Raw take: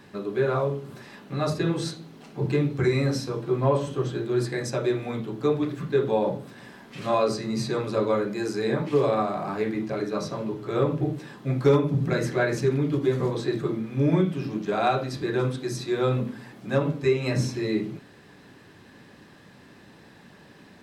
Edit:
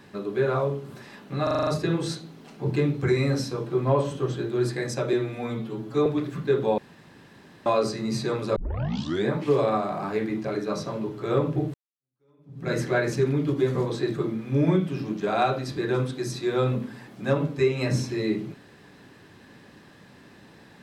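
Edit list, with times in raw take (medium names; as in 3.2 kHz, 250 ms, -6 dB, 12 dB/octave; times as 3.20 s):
1.43 s: stutter 0.04 s, 7 plays
4.89–5.51 s: stretch 1.5×
6.23–7.11 s: room tone
8.01 s: tape start 0.71 s
11.19–12.17 s: fade in exponential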